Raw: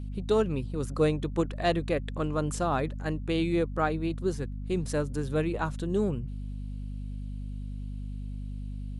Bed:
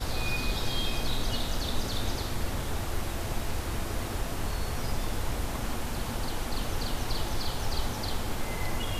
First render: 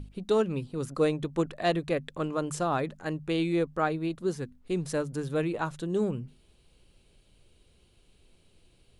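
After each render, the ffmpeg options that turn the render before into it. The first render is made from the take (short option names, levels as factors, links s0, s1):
-af "bandreject=f=50:t=h:w=6,bandreject=f=100:t=h:w=6,bandreject=f=150:t=h:w=6,bandreject=f=200:t=h:w=6,bandreject=f=250:t=h:w=6"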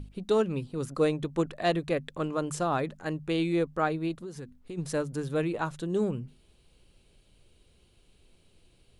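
-filter_complex "[0:a]asplit=3[s0][s1][s2];[s0]afade=t=out:st=4.21:d=0.02[s3];[s1]acompressor=threshold=0.0158:ratio=8:attack=3.2:release=140:knee=1:detection=peak,afade=t=in:st=4.21:d=0.02,afade=t=out:st=4.77:d=0.02[s4];[s2]afade=t=in:st=4.77:d=0.02[s5];[s3][s4][s5]amix=inputs=3:normalize=0"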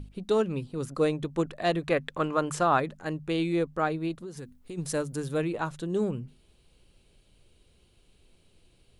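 -filter_complex "[0:a]asettb=1/sr,asplit=3[s0][s1][s2];[s0]atrim=end=1.814[s3];[s1]atrim=start=1.81:end=2.8,asetpts=PTS-STARTPTS,afade=t=in:d=0.004:c=qsin,afade=t=out:st=0.986:d=0.004:c=qsin,equalizer=f=1400:w=0.53:g=7.5[s4];[s2]atrim=start=2.796[s5];[s3][s4]acrossfade=d=0.004:c1=hsin:c2=qsin[s6];[s6][s5]acrossfade=d=0.004:c1=qsin:c2=hsin,asettb=1/sr,asplit=3[s7][s8][s9];[s7]atrim=end=4.374[s10];[s8]atrim=start=4.37:end=5.38,asetpts=PTS-STARTPTS,afade=t=in:d=0.004:c=qsin,afade=t=out:st=1.006:d=0.004:c=qsin,highshelf=f=6600:g=9[s11];[s9]atrim=start=5.376[s12];[s10][s11]acrossfade=d=0.004:c1=hsin:c2=qsin[s13];[s13][s12]acrossfade=d=0.004:c1=qsin:c2=hsin"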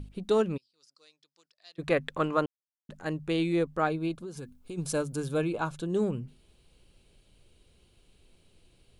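-filter_complex "[0:a]asplit=3[s0][s1][s2];[s0]afade=t=out:st=0.56:d=0.02[s3];[s1]bandpass=f=5000:t=q:w=9.8,afade=t=in:st=0.56:d=0.02,afade=t=out:st=1.78:d=0.02[s4];[s2]afade=t=in:st=1.78:d=0.02[s5];[s3][s4][s5]amix=inputs=3:normalize=0,asettb=1/sr,asplit=3[s6][s7][s8];[s6]atrim=end=3.874[s9];[s7]atrim=start=3.87:end=5.86,asetpts=PTS-STARTPTS,afade=t=in:d=0.004:c=qsin,afade=t=out:st=1.986:d=0.004:c=qsin,asuperstop=centerf=1900:order=20:qfactor=5.8[s10];[s8]atrim=start=5.856[s11];[s9][s10]acrossfade=d=0.004:c1=hsin:c2=qsin[s12];[s12][s11]acrossfade=d=0.004:c1=qsin:c2=hsin,asplit=3[s13][s14][s15];[s13]atrim=end=2.46,asetpts=PTS-STARTPTS,afade=t=out:st=2.456:d=0.004:c=hsin[s16];[s14]atrim=start=2.46:end=2.89,asetpts=PTS-STARTPTS,volume=0[s17];[s15]atrim=start=2.89,asetpts=PTS-STARTPTS,afade=t=in:d=0.004:c=hsin[s18];[s16][s17][s18]concat=n=3:v=0:a=1"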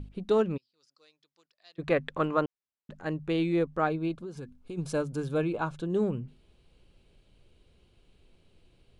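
-af "aemphasis=mode=reproduction:type=50fm"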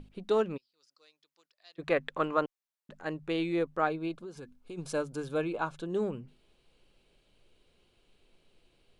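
-af "equalizer=f=64:w=0.33:g=-12"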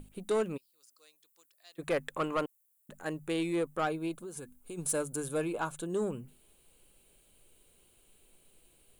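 -af "aexciter=amount=9.3:drive=6.1:freq=7300,asoftclip=type=tanh:threshold=0.0708"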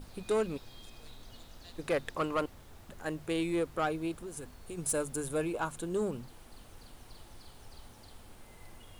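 -filter_complex "[1:a]volume=0.0841[s0];[0:a][s0]amix=inputs=2:normalize=0"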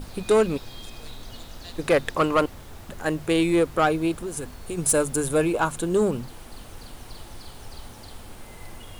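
-af "volume=3.55"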